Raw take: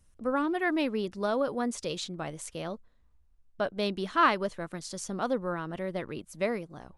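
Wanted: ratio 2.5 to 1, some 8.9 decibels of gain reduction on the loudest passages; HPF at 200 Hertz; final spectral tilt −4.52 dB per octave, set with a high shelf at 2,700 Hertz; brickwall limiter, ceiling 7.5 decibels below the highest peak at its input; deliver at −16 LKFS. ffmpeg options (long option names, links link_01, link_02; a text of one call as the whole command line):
ffmpeg -i in.wav -af "highpass=200,highshelf=frequency=2700:gain=-5,acompressor=threshold=-33dB:ratio=2.5,volume=23dB,alimiter=limit=-5.5dB:level=0:latency=1" out.wav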